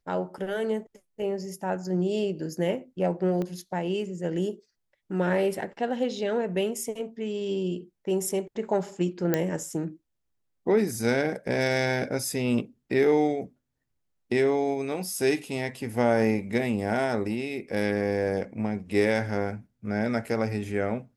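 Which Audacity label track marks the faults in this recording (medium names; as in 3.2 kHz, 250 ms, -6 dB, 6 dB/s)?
3.420000	3.420000	pop -20 dBFS
9.340000	9.340000	pop -10 dBFS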